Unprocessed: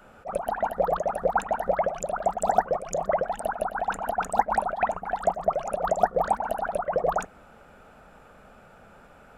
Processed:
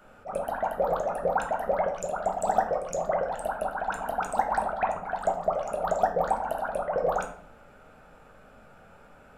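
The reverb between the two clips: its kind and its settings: shoebox room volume 78 m³, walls mixed, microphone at 0.51 m; gain -3.5 dB

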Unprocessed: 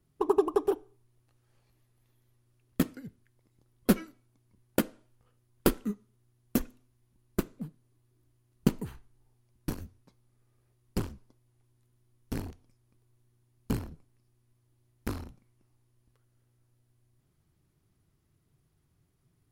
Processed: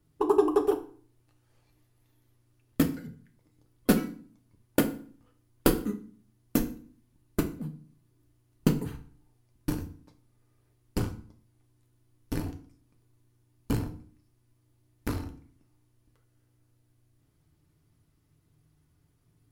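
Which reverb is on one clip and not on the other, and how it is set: FDN reverb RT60 0.46 s, low-frequency decay 1.35×, high-frequency decay 0.8×, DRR 4.5 dB; gain +1.5 dB

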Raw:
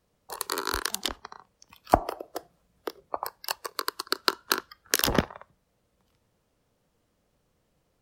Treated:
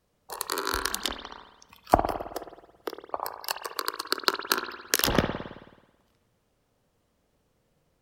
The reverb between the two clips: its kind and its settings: spring tank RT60 1.1 s, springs 54 ms, chirp 20 ms, DRR 6 dB

